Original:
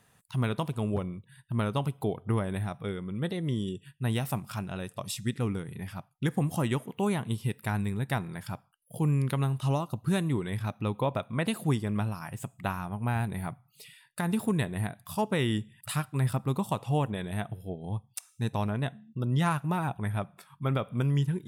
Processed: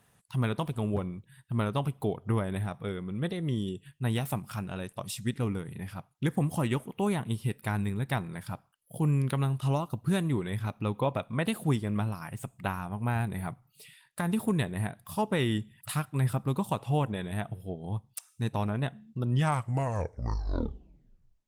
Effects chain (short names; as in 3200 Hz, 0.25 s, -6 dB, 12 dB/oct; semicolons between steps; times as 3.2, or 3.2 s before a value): tape stop at the end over 2.22 s; Opus 20 kbps 48000 Hz